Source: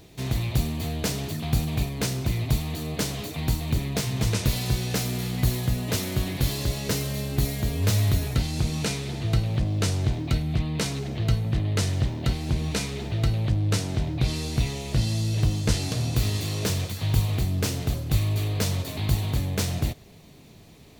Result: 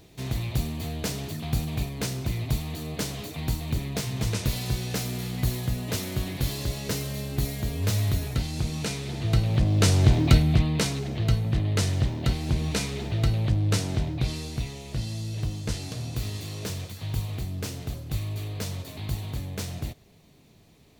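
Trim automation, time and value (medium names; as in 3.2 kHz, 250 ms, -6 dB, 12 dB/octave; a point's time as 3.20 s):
8.90 s -3 dB
10.27 s +8 dB
10.97 s 0 dB
13.95 s 0 dB
14.67 s -7 dB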